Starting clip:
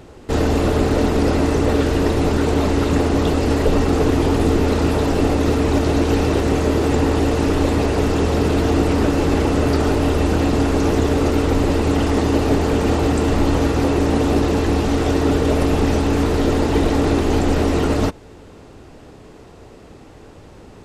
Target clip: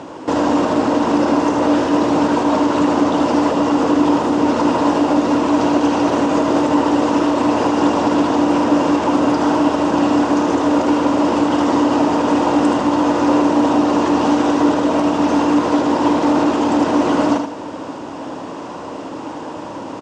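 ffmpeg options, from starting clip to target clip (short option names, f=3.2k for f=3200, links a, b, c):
-filter_complex "[0:a]areverse,acompressor=mode=upward:threshold=-31dB:ratio=2.5,areverse,alimiter=limit=-13dB:level=0:latency=1:release=123,asplit=2[a][b];[b]acompressor=threshold=-33dB:ratio=6,volume=-3dB[c];[a][c]amix=inputs=2:normalize=0,aecho=1:1:81|162|243|324:0.501|0.18|0.065|0.0234,asetrate=45938,aresample=44100,highpass=220,equalizer=f=290:t=q:w=4:g=8,equalizer=f=410:t=q:w=4:g=-7,equalizer=f=590:t=q:w=4:g=4,equalizer=f=980:t=q:w=4:g=10,equalizer=f=2.1k:t=q:w=4:g=-5,equalizer=f=4.1k:t=q:w=4:g=-5,lowpass=f=7.1k:w=0.5412,lowpass=f=7.1k:w=1.3066,volume=4dB"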